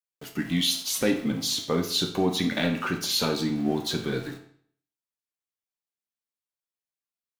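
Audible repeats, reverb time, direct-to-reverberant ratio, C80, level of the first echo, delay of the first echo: no echo, 0.55 s, 3.0 dB, 12.0 dB, no echo, no echo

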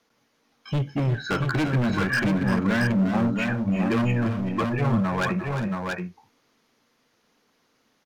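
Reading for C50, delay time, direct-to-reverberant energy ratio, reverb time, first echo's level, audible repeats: no reverb, 346 ms, no reverb, no reverb, -10.5 dB, 3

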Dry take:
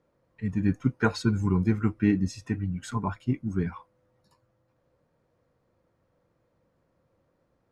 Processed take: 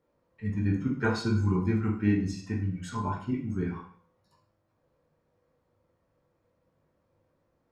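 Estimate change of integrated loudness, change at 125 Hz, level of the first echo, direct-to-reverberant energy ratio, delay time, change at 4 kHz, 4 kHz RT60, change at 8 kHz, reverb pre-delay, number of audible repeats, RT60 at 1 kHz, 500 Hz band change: -1.5 dB, -1.0 dB, no echo, -1.5 dB, no echo, -1.5 dB, 0.50 s, -3.5 dB, 7 ms, no echo, 0.50 s, -1.0 dB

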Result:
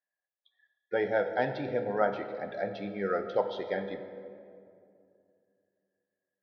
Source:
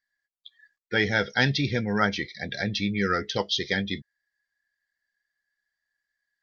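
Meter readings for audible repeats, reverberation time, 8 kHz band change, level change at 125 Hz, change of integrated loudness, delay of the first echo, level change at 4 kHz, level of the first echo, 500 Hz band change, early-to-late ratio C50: no echo, 2.5 s, no reading, -14.5 dB, -6.0 dB, no echo, -20.5 dB, no echo, +1.5 dB, 9.0 dB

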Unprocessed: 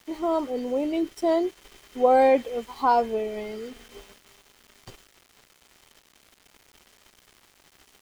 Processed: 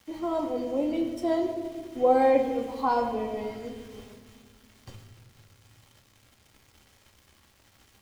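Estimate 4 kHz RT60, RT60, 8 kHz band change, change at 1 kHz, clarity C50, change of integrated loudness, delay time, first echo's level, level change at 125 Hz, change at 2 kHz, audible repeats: 1.3 s, 1.9 s, no reading, -4.0 dB, 7.5 dB, -3.0 dB, no echo, no echo, no reading, -4.0 dB, no echo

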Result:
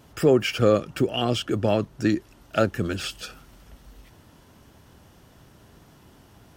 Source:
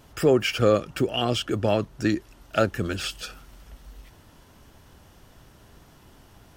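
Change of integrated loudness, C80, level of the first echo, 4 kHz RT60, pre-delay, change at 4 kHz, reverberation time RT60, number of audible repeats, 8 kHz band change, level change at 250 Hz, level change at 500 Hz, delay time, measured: +0.5 dB, no reverb, no echo, no reverb, no reverb, -1.0 dB, no reverb, no echo, -1.0 dB, +1.5 dB, +0.5 dB, no echo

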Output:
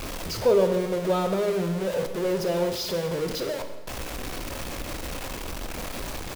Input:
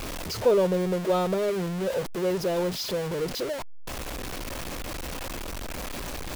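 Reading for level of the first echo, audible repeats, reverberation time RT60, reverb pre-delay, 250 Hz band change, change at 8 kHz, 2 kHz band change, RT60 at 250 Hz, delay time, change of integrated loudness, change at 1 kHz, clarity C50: -17.0 dB, 1, 1.2 s, 17 ms, +0.5 dB, +1.0 dB, +1.0 dB, 1.5 s, 128 ms, +1.0 dB, +0.5 dB, 8.5 dB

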